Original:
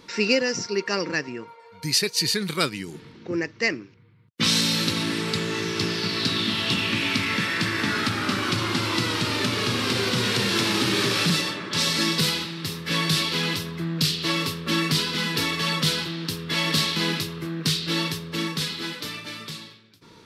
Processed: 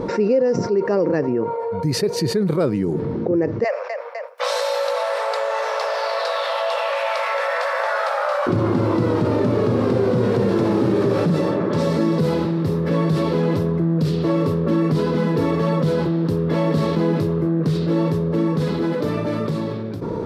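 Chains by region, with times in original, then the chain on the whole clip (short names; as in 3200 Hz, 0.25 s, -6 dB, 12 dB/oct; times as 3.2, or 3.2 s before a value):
3.64–8.47 steep high-pass 520 Hz 96 dB/oct + feedback echo 0.253 s, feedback 39%, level -20 dB
whole clip: EQ curve 300 Hz 0 dB, 540 Hz +6 dB, 2900 Hz -25 dB; fast leveller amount 70%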